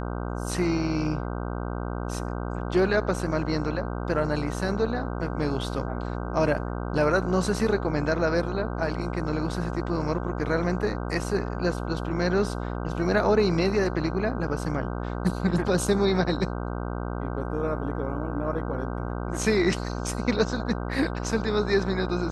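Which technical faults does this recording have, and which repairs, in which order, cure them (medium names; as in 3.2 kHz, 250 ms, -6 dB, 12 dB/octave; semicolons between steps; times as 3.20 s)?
buzz 60 Hz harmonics 26 -31 dBFS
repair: de-hum 60 Hz, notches 26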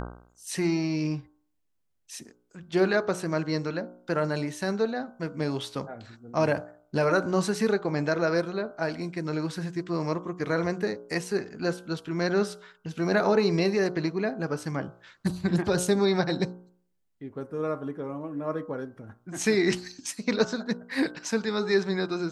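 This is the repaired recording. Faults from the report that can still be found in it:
nothing left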